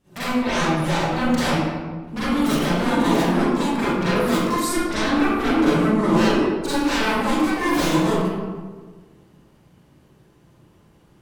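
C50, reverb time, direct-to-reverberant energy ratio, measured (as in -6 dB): -6.0 dB, 1.5 s, -12.5 dB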